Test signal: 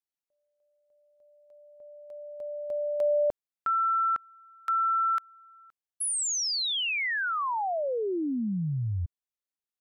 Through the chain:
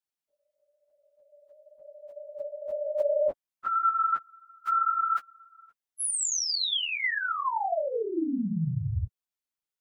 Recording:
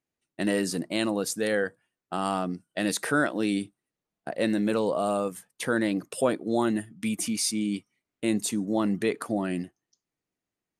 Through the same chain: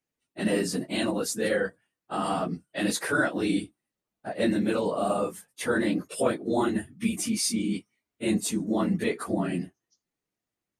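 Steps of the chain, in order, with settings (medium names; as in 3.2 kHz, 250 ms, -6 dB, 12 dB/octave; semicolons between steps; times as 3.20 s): phase randomisation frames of 50 ms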